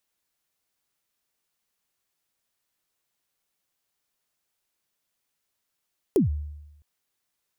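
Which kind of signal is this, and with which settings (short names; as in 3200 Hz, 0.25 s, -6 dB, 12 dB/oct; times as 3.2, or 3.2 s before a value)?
kick drum length 0.66 s, from 450 Hz, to 74 Hz, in 0.131 s, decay 0.98 s, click on, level -14.5 dB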